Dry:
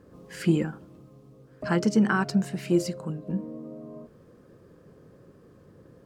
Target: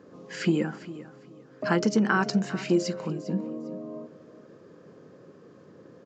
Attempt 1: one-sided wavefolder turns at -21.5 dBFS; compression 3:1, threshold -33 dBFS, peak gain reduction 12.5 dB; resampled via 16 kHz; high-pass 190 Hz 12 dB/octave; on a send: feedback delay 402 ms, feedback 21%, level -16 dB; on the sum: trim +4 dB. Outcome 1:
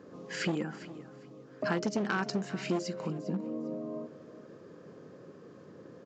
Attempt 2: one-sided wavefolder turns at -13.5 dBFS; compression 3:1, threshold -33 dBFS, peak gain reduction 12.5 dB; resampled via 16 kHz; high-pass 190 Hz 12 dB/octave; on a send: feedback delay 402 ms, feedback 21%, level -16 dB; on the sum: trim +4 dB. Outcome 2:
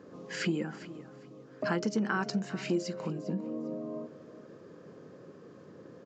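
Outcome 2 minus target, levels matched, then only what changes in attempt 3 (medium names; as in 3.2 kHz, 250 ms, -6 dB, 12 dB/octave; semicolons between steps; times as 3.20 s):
compression: peak gain reduction +7.5 dB
change: compression 3:1, threshold -22 dBFS, peak gain reduction 5.5 dB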